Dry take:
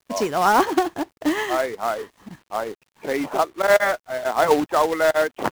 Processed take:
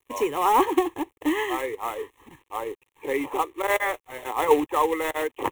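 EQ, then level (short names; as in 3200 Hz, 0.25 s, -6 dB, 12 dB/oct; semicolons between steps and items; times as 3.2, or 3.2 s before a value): fixed phaser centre 980 Hz, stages 8; 0.0 dB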